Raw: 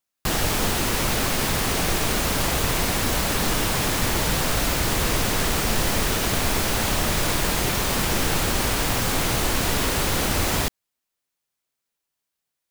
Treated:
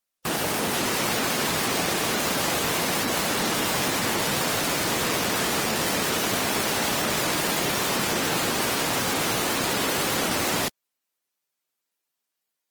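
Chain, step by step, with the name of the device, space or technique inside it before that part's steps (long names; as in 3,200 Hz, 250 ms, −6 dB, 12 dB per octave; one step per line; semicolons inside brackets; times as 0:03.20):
noise-suppressed video call (high-pass filter 180 Hz 12 dB per octave; gate on every frequency bin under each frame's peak −20 dB strong; Opus 24 kbit/s 48,000 Hz)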